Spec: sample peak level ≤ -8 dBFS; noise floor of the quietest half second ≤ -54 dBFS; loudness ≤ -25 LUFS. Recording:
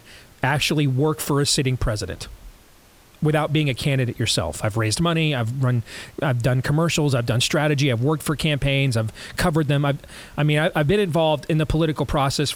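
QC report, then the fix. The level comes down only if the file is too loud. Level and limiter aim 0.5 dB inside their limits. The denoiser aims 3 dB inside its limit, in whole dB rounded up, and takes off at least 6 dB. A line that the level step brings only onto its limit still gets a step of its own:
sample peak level -6.0 dBFS: fail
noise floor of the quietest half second -51 dBFS: fail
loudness -21.0 LUFS: fail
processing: trim -4.5 dB

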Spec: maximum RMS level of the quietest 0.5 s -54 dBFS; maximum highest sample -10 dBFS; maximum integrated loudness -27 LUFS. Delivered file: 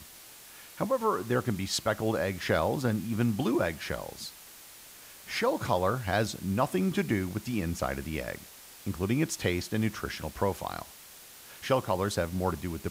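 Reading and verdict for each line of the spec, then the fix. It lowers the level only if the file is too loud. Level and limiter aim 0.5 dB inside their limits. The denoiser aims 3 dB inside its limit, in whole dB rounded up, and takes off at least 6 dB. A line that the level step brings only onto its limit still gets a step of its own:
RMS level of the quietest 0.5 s -50 dBFS: fail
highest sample -13.0 dBFS: pass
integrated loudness -30.5 LUFS: pass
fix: noise reduction 7 dB, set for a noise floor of -50 dBFS

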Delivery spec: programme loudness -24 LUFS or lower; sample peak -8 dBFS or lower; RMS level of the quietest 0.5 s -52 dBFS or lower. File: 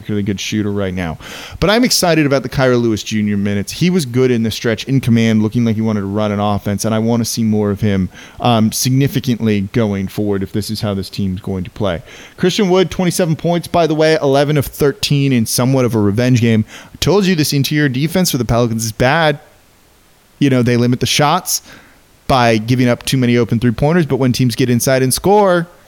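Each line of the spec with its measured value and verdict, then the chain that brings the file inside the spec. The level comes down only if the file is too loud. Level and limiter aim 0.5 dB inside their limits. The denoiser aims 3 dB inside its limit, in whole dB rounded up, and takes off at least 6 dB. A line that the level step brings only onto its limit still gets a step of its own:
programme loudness -14.5 LUFS: fail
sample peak -2.0 dBFS: fail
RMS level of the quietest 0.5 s -49 dBFS: fail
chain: trim -10 dB

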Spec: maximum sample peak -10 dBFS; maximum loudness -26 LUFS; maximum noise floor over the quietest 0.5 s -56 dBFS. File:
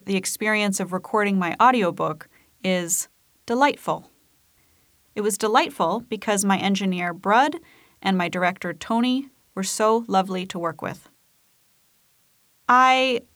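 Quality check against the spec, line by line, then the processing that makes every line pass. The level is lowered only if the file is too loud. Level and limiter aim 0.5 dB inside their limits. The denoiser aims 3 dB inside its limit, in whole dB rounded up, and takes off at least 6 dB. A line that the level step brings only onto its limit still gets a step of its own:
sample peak -5.0 dBFS: fail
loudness -22.0 LUFS: fail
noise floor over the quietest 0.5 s -63 dBFS: pass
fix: trim -4.5 dB; peak limiter -10.5 dBFS

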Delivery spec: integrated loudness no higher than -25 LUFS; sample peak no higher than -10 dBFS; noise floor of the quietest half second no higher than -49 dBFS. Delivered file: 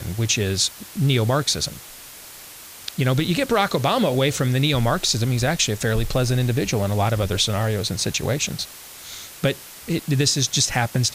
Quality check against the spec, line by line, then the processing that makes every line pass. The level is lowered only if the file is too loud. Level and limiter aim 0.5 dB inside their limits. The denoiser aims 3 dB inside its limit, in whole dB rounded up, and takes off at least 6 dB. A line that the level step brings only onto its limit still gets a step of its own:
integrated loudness -21.0 LUFS: fail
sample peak -6.5 dBFS: fail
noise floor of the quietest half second -41 dBFS: fail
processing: noise reduction 7 dB, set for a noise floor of -41 dBFS; trim -4.5 dB

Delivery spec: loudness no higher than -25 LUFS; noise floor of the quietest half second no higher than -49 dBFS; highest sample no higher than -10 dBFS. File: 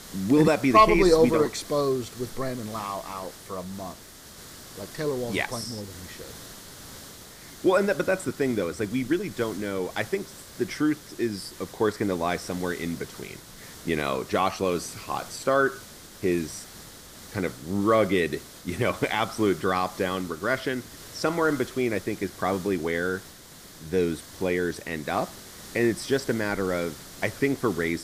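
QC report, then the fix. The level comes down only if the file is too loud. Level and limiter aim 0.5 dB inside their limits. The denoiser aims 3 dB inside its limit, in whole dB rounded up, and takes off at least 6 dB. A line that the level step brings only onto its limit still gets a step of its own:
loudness -26.5 LUFS: pass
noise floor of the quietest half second -47 dBFS: fail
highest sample -5.5 dBFS: fail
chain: noise reduction 6 dB, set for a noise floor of -47 dBFS; peak limiter -10.5 dBFS

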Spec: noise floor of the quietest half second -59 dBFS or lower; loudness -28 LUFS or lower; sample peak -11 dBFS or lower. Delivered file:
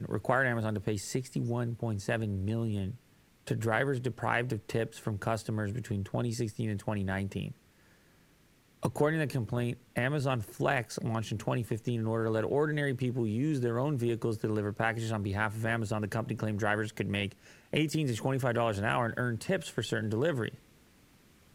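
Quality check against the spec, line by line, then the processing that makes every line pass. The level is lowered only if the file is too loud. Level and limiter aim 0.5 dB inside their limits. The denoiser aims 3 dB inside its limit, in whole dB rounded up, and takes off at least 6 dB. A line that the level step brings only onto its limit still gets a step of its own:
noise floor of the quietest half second -64 dBFS: pass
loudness -32.5 LUFS: pass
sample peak -11.5 dBFS: pass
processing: none needed

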